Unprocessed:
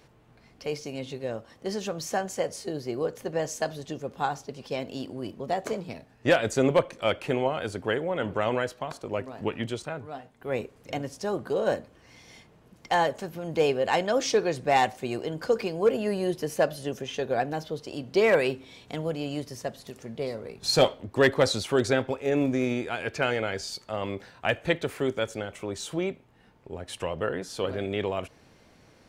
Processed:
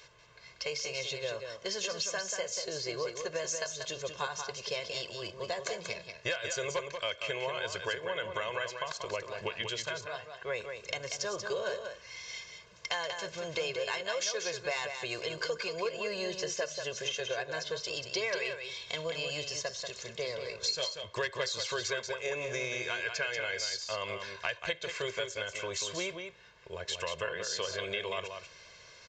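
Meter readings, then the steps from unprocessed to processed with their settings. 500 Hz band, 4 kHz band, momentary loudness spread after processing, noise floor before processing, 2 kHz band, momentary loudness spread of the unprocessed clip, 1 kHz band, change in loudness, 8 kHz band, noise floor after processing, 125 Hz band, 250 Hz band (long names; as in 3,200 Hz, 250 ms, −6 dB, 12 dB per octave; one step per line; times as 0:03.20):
−9.5 dB, +0.5 dB, 6 LU, −58 dBFS, −2.5 dB, 13 LU, −10.5 dB, −6.5 dB, +2.5 dB, −55 dBFS, −13.0 dB, −17.5 dB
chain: tilt shelving filter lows −9.5 dB, about 910 Hz
comb filter 1.9 ms, depth 97%
downward compressor 6 to 1, threshold −30 dBFS, peak gain reduction 20 dB
single-tap delay 187 ms −6.5 dB
downsampling to 16,000 Hz
level −2 dB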